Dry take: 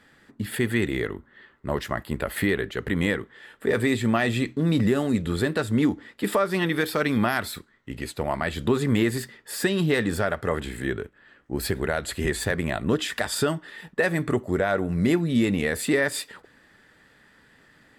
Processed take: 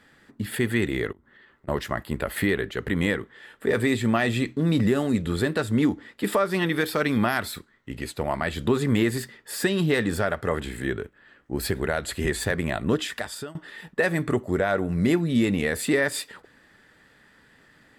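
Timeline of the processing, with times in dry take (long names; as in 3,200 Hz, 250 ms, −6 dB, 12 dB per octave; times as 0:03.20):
0:01.12–0:01.68: downward compressor 10 to 1, threshold −49 dBFS
0:12.94–0:13.55: fade out linear, to −22 dB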